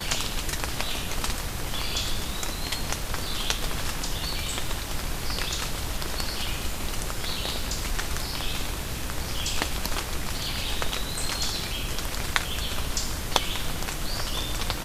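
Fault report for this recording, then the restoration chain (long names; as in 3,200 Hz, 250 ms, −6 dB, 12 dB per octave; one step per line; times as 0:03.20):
surface crackle 23 per second −35 dBFS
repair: click removal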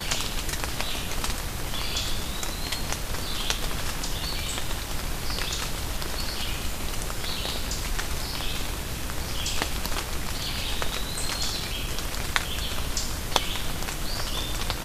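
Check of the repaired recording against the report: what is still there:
none of them is left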